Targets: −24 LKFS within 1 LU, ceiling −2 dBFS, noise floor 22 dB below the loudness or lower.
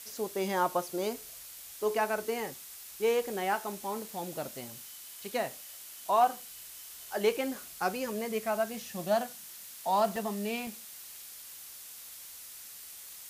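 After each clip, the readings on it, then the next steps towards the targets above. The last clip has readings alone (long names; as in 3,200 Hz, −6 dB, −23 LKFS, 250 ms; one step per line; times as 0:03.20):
number of dropouts 2; longest dropout 1.5 ms; background noise floor −48 dBFS; target noise floor −55 dBFS; integrated loudness −33.0 LKFS; sample peak −15.0 dBFS; target loudness −24.0 LKFS
→ repair the gap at 0:10.16/0:10.67, 1.5 ms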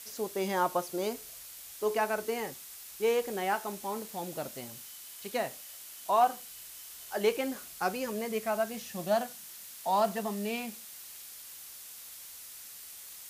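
number of dropouts 0; background noise floor −48 dBFS; target noise floor −55 dBFS
→ broadband denoise 7 dB, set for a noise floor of −48 dBFS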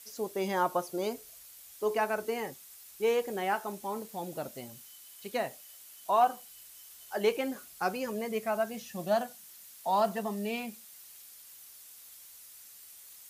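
background noise floor −52 dBFS; target noise floor −55 dBFS
→ broadband denoise 6 dB, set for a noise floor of −52 dBFS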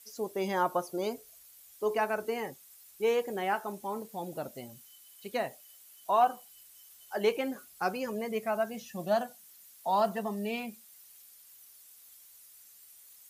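background noise floor −56 dBFS; integrated loudness −32.5 LKFS; sample peak −15.0 dBFS; target loudness −24.0 LKFS
→ level +8.5 dB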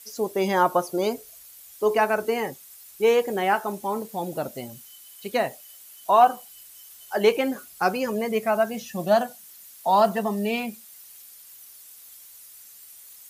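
integrated loudness −24.0 LKFS; sample peak −6.5 dBFS; background noise floor −48 dBFS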